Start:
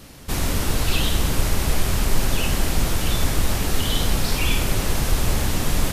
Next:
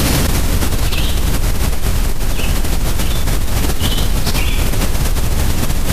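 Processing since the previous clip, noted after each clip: low shelf 160 Hz +4.5 dB; fast leveller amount 100%; gain -6 dB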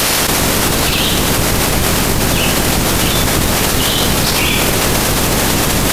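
spectral limiter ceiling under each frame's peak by 22 dB; requantised 6-bit, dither none; gain -1 dB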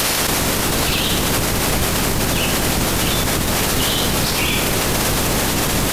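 limiter -8.5 dBFS, peak gain reduction 7.5 dB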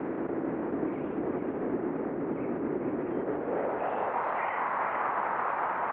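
mistuned SSB -380 Hz 510–2400 Hz; band-pass sweep 320 Hz -> 980 Hz, 3.05–4.25; echo 0.443 s -5 dB

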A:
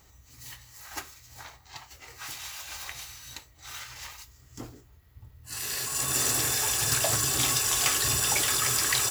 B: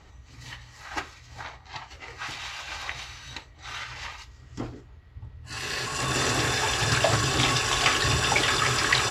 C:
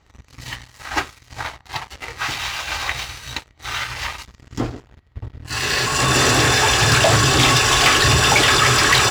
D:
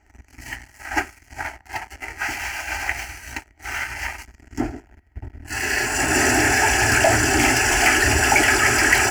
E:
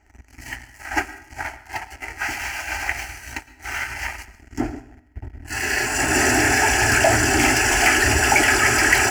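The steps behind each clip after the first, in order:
LPF 3600 Hz 12 dB/oct; gain +7.5 dB
sample leveller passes 3
fixed phaser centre 750 Hz, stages 8; gain +1.5 dB
reverb RT60 0.65 s, pre-delay 0.107 s, DRR 17 dB

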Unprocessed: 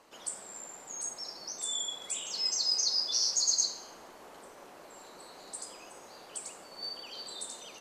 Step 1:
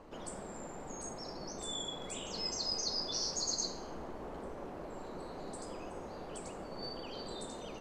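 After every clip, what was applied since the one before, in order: tilt -4.5 dB/oct; gain +3 dB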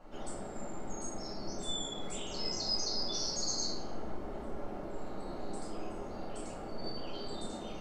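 reverb RT60 0.50 s, pre-delay 3 ms, DRR -4.5 dB; gain -7 dB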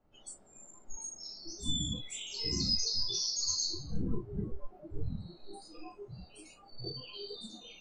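wind noise 200 Hz -46 dBFS; spectral noise reduction 24 dB; gain +3 dB

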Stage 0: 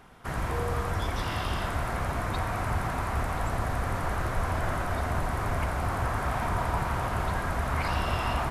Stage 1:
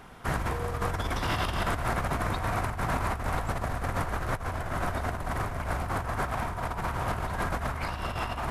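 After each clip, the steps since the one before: negative-ratio compressor -31 dBFS, ratio -0.5; gain +1.5 dB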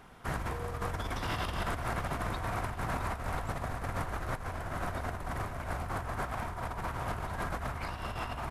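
feedback echo 0.662 s, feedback 55%, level -14 dB; gain -5.5 dB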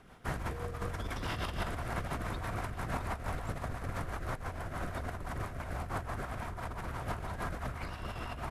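rotary speaker horn 6 Hz

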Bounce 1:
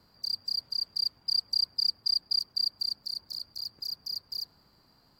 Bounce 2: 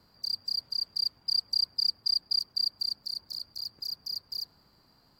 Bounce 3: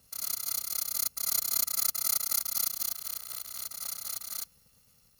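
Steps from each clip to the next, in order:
nothing audible
FFT order left unsorted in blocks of 128 samples; reverse echo 0.113 s -4.5 dB; gain -1.5 dB

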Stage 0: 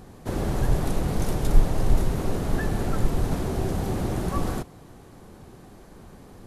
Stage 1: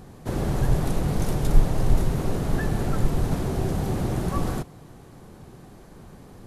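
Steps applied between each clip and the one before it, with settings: bell 140 Hz +4.5 dB 0.54 oct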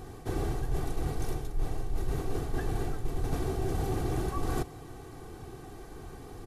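comb 2.6 ms, depth 61%; reverse; compressor 10:1, threshold -26 dBFS, peak gain reduction 21 dB; reverse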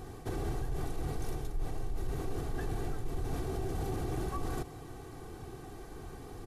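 limiter -25.5 dBFS, peak gain reduction 6 dB; gain -1 dB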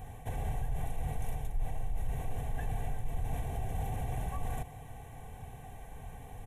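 fixed phaser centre 1300 Hz, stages 6; gain +2 dB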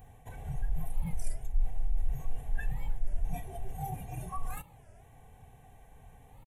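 spectral noise reduction 16 dB; record warp 33 1/3 rpm, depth 250 cents; gain +7.5 dB

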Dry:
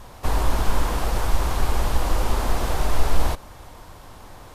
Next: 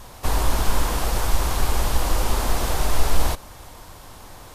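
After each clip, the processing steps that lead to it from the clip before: high shelf 3500 Hz +7 dB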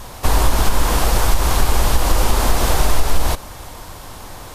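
compressor, threshold -15 dBFS, peak gain reduction 7 dB; gain +7.5 dB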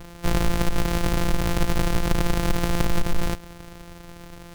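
sample sorter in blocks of 256 samples; gain -7.5 dB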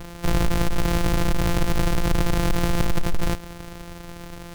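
soft clip -17.5 dBFS, distortion -14 dB; gain +4 dB

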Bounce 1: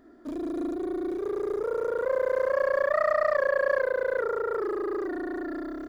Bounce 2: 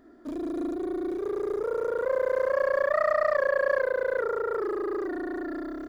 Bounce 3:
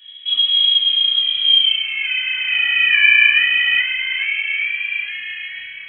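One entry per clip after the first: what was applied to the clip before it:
nothing audible
high-pass sweep 200 Hz -> 1100 Hz, 1.33–1.87; reverb RT60 0.45 s, pre-delay 3 ms, DRR -7 dB; inverted band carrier 3600 Hz; gain +2 dB

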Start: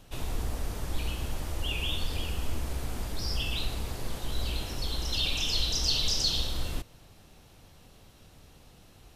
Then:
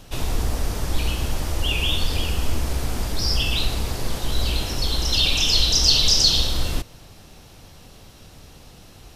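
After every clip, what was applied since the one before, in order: bell 5300 Hz +3.5 dB 0.6 oct; gain +9 dB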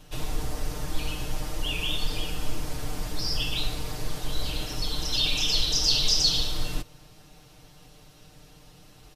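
comb 6.6 ms, depth 85%; gain -8.5 dB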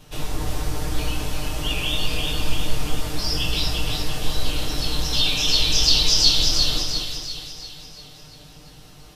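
chorus 2.3 Hz, delay 18.5 ms, depth 2.2 ms; split-band echo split 1800 Hz, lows 0.207 s, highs 0.345 s, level -3.5 dB; gain +7 dB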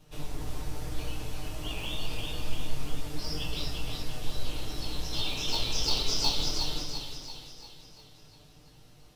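in parallel at -8.5 dB: sample-and-hold 25×; on the sum: flange 0.3 Hz, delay 6.4 ms, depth 3.3 ms, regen +71%; gain -8 dB

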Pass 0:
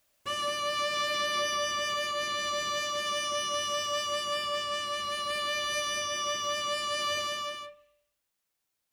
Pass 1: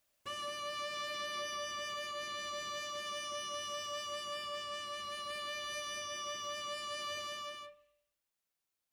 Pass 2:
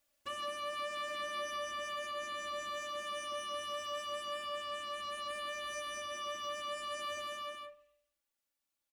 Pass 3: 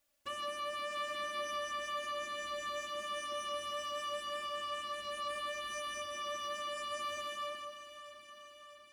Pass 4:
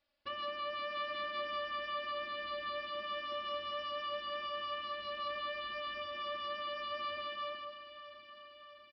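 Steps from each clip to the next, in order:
compressor 1.5:1, threshold -37 dBFS, peak gain reduction 4 dB; gain -6.5 dB
comb 3.5 ms, depth 78%; gain -2.5 dB
echo with dull and thin repeats by turns 0.322 s, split 1700 Hz, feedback 79%, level -10 dB
downsampling 11025 Hz

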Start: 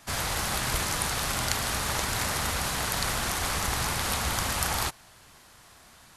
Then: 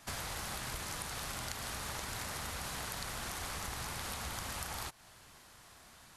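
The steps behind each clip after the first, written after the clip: compressor 6:1, threshold -34 dBFS, peak gain reduction 11.5 dB; gain -4 dB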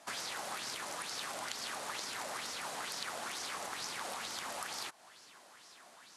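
Chebyshev band-pass 290–9400 Hz, order 2; LFO bell 2.2 Hz 600–5600 Hz +10 dB; gain -1.5 dB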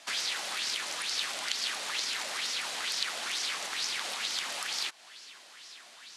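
weighting filter D

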